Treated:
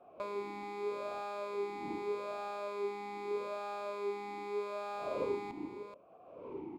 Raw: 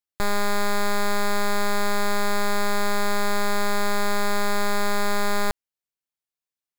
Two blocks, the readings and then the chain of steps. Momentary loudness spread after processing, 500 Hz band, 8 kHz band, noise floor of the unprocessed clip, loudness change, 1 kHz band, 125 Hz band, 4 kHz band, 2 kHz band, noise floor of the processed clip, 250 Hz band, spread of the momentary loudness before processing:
8 LU, -9.0 dB, under -30 dB, under -85 dBFS, -14.5 dB, -14.5 dB, n/a, -24.0 dB, -22.0 dB, -58 dBFS, -16.0 dB, 1 LU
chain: wind noise 430 Hz -35 dBFS; dynamic EQ 1300 Hz, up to -3 dB, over -30 dBFS, Q 0.76; echo 0.429 s -9.5 dB; vowel sweep a-u 0.81 Hz; gain -1 dB

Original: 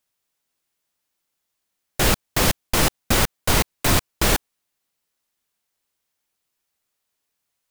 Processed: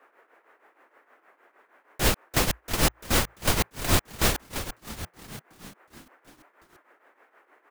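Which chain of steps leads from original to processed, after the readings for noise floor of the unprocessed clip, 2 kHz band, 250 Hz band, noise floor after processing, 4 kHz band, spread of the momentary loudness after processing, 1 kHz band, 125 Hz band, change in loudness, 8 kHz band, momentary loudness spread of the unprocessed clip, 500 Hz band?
-79 dBFS, -5.0 dB, -5.0 dB, -67 dBFS, -4.5 dB, 16 LU, -5.0 dB, -4.5 dB, -5.5 dB, -5.0 dB, 1 LU, -5.0 dB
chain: frequency-shifting echo 0.343 s, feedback 60%, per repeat -57 Hz, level -11 dB; band noise 310–1900 Hz -55 dBFS; tremolo triangle 6.4 Hz, depth 80%; gain -1.5 dB

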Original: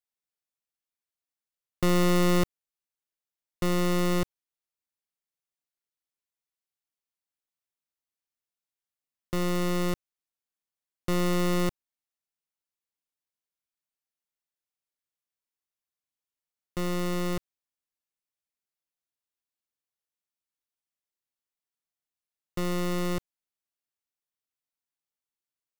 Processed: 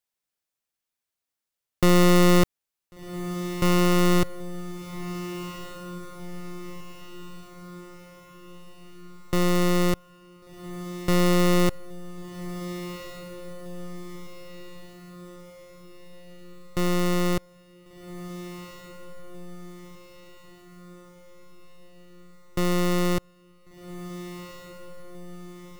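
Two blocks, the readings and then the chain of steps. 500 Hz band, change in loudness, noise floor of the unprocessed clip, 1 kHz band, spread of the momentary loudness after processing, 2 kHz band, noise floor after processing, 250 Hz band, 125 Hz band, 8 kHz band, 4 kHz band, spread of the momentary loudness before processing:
+5.5 dB, +3.5 dB, under -85 dBFS, +6.0 dB, 23 LU, +5.5 dB, under -85 dBFS, +6.0 dB, +6.0 dB, +5.5 dB, +6.0 dB, 13 LU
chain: diffused feedback echo 1.482 s, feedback 54%, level -13 dB; gain +5.5 dB

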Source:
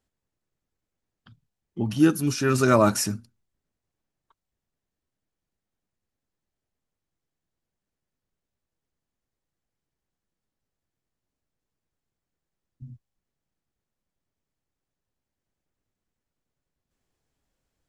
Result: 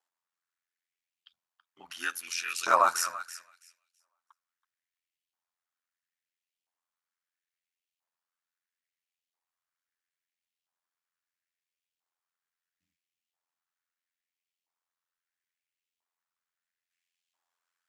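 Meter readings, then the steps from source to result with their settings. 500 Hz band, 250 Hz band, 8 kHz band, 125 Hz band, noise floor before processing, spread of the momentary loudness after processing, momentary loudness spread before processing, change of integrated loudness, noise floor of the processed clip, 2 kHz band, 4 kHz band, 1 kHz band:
-12.0 dB, -30.0 dB, -3.5 dB, under -35 dB, under -85 dBFS, 21 LU, 12 LU, -6.0 dB, under -85 dBFS, -1.5 dB, -2.5 dB, +1.0 dB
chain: thinning echo 0.328 s, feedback 18%, high-pass 320 Hz, level -13.5 dB; LFO high-pass saw up 0.75 Hz 870–3000 Hz; ring modulator 43 Hz; gain -1.5 dB

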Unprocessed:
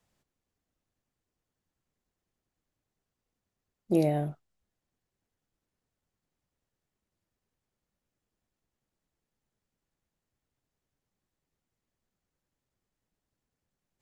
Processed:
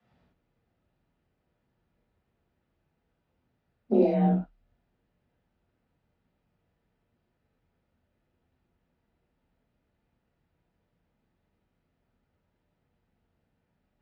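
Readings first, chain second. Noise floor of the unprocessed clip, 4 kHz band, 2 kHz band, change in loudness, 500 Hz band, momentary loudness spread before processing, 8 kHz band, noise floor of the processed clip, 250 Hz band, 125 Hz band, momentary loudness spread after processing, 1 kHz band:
under -85 dBFS, n/a, -0.5 dB, +4.0 dB, +4.5 dB, 9 LU, under -15 dB, -78 dBFS, +5.0 dB, +3.0 dB, 11 LU, +4.5 dB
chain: notch 1000 Hz, Q 12; dynamic EQ 1300 Hz, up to -3 dB, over -43 dBFS, Q 0.74; compressor 10:1, threshold -28 dBFS, peak gain reduction 9 dB; frequency shift +35 Hz; air absorption 330 m; non-linear reverb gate 0.13 s flat, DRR -7.5 dB; gain +3.5 dB

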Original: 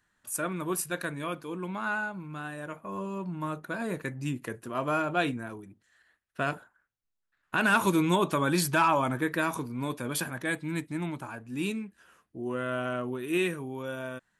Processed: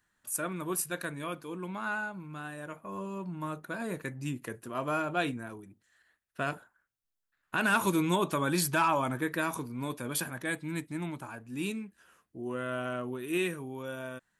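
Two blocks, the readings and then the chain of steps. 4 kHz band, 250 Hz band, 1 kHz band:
-2.0 dB, -3.0 dB, -3.0 dB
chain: high shelf 8300 Hz +5.5 dB; gain -3 dB

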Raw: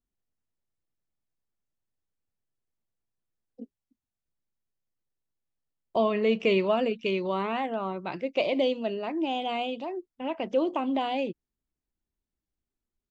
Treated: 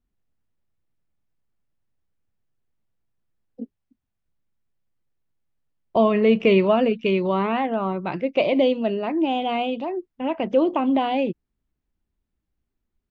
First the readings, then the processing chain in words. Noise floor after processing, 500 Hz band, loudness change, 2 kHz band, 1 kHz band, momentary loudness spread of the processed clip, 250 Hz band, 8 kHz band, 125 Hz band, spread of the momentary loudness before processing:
-80 dBFS, +6.5 dB, +6.5 dB, +4.5 dB, +6.0 dB, 11 LU, +8.5 dB, n/a, +9.5 dB, 10 LU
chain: tone controls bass +5 dB, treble -11 dB; gain +6 dB

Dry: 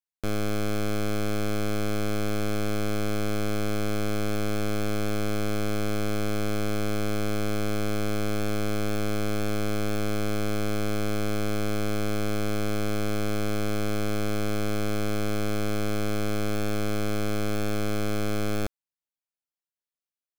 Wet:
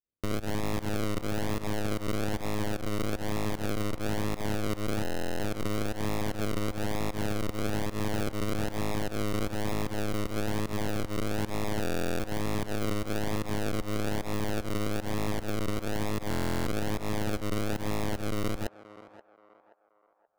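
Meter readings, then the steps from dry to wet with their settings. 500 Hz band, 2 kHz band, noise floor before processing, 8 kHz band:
-3.5 dB, -3.5 dB, under -85 dBFS, -3.5 dB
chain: bell 1900 Hz +6.5 dB 0.89 oct; decimation with a swept rate 41×, swing 60% 1.1 Hz; pump 152 bpm, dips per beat 1, -21 dB, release 0.13 s; on a send: narrowing echo 0.528 s, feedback 45%, band-pass 870 Hz, level -13 dB; on the sum: stuck buffer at 5.02/11.82/16.29, samples 1024, times 15; gain -3 dB

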